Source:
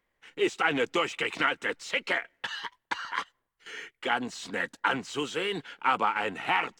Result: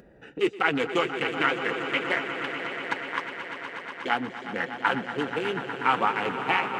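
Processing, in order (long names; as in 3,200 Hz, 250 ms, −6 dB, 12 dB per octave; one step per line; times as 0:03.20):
adaptive Wiener filter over 41 samples
high-pass filter 69 Hz
echo that builds up and dies away 121 ms, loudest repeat 5, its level −12.5 dB
upward compression, threshold −35 dBFS
flanger 1.8 Hz, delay 4.6 ms, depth 2.8 ms, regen −55%
level +7 dB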